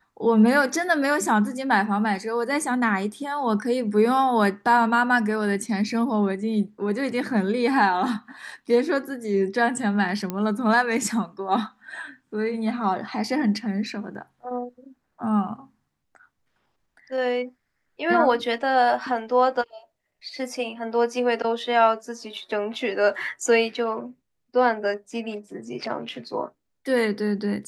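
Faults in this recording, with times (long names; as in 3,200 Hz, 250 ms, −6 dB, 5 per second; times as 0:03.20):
0:10.30: click −14 dBFS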